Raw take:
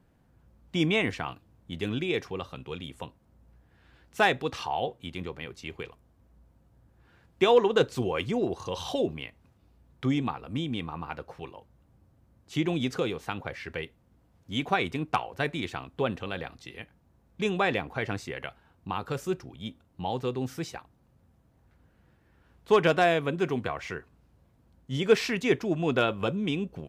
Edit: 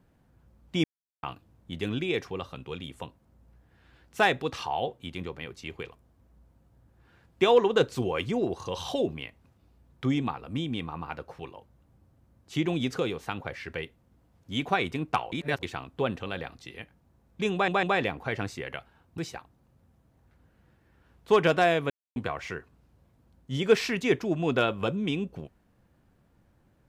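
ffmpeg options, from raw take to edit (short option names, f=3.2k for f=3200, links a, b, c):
-filter_complex "[0:a]asplit=10[a][b][c][d][e][f][g][h][i][j];[a]atrim=end=0.84,asetpts=PTS-STARTPTS,afade=t=out:st=0.836:d=0.004:c=hsin[k];[b]atrim=start=0.84:end=1.23,asetpts=PTS-STARTPTS,volume=0[l];[c]atrim=start=1.23:end=15.322,asetpts=PTS-STARTPTS,afade=t=in:d=0.004:c=hsin[m];[d]atrim=start=15.318:end=15.632,asetpts=PTS-STARTPTS,areverse[n];[e]atrim=start=15.628:end=17.682[o];[f]atrim=start=17.528:end=17.682[p];[g]atrim=start=17.528:end=18.882[q];[h]atrim=start=20.578:end=23.3,asetpts=PTS-STARTPTS,afade=t=out:st=2.718:d=0.004:c=hsin[r];[i]atrim=start=23.3:end=23.56,asetpts=PTS-STARTPTS,volume=0[s];[j]atrim=start=23.56,asetpts=PTS-STARTPTS,afade=t=in:d=0.004:c=hsin[t];[k][l][m]concat=n=3:v=0:a=1[u];[u][n]acrossfade=d=0.004:c1=hsin:c2=hsin[v];[v][o]acrossfade=d=0.004:c1=hsin:c2=hsin[w];[w][p]acrossfade=d=0.004:c1=hsin:c2=hsin[x];[x][q]acrossfade=d=0.004:c1=hsin:c2=hsin[y];[r][s][t]concat=n=3:v=0:a=1[z];[y][z]acrossfade=d=0.004:c1=hsin:c2=hsin"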